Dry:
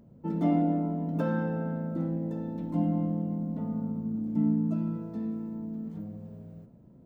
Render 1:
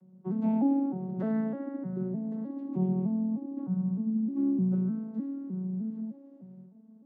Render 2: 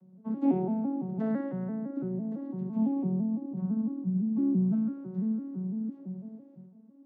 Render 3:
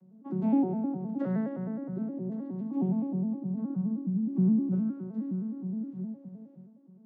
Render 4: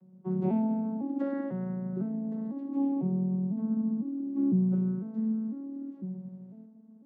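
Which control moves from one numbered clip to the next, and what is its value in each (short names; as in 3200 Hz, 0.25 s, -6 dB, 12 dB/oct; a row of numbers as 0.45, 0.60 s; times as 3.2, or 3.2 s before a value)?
arpeggiated vocoder, a note every: 0.305, 0.168, 0.104, 0.501 s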